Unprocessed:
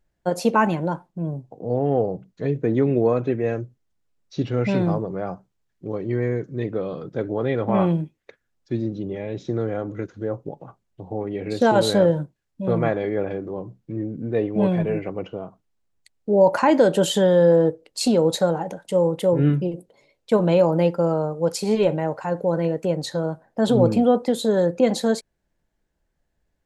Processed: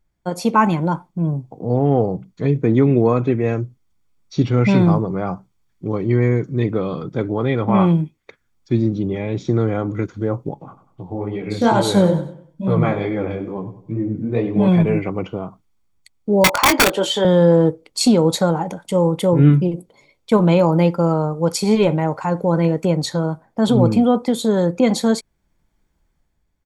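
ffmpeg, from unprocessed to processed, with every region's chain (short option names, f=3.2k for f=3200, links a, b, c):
-filter_complex "[0:a]asettb=1/sr,asplit=3[a][b][c];[a]atrim=end=10.544[d];[b]atrim=start=10.54:end=14.68,asetpts=PTS-STARTPTS,afade=t=in:d=0.004:c=qsin,afade=t=out:st=4.136:d=0.004:c=qsin,flanger=delay=15:depth=7.2:speed=2.3,aecho=1:1:96|192|288|384:0.224|0.0851|0.0323|0.0123,atrim=end_sample=182574[e];[c]atrim=start=14.676[f];[d][e]acrossfade=d=0.004:c1=hsin:c2=qsin[g];[g][f]acrossfade=d=0.004:c1=qsin:c2=hsin,asettb=1/sr,asplit=3[h][i][j];[h]atrim=end=16.444[k];[i]atrim=start=16.44:end=17.25,asetpts=PTS-STARTPTS,afade=t=in:d=0.004:c=qsin,afade=t=out:st=0.806:d=0.004:c=qsin,acrossover=split=300 5800:gain=0.0794 1 0.251[l][m][n];[l][m][n]amix=inputs=3:normalize=0,aeval=exprs='(mod(3.55*val(0)+1,2)-1)/3.55':c=same,asplit=2[o][p];[p]adelay=21,volume=-9.5dB[q];[o][q]amix=inputs=2:normalize=0,atrim=end_sample=35721[r];[j]atrim=start=17.246[s];[k][r]acrossfade=d=0.004:c1=hsin:c2=qsin[t];[t][s]acrossfade=d=0.004:c1=qsin:c2=hsin,dynaudnorm=f=110:g=11:m=7dB,aecho=1:1:0.9:0.4"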